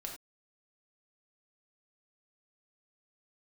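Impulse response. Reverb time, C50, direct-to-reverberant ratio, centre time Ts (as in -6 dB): no single decay rate, 5.5 dB, 0.0 dB, 25 ms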